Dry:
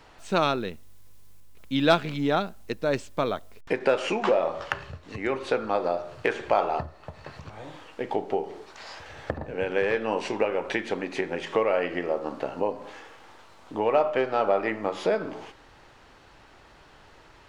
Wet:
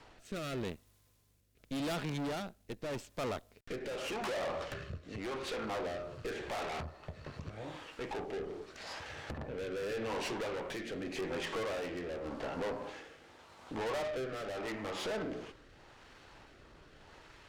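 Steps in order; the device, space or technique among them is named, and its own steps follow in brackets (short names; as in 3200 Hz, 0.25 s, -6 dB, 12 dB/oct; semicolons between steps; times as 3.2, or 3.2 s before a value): overdriven rotary cabinet (tube stage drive 36 dB, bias 0.7; rotary speaker horn 0.85 Hz); gain +2.5 dB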